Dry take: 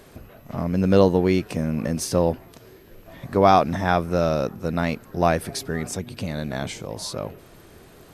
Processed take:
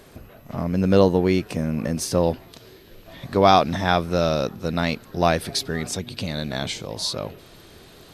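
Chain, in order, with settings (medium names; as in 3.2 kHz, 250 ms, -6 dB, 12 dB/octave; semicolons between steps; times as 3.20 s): peaking EQ 3.9 kHz +2 dB 1 oct, from 2.23 s +9.5 dB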